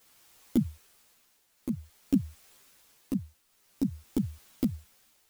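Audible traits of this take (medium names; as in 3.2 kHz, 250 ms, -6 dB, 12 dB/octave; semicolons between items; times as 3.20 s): a quantiser's noise floor 10-bit, dither triangular; tremolo triangle 0.51 Hz, depth 75%; a shimmering, thickened sound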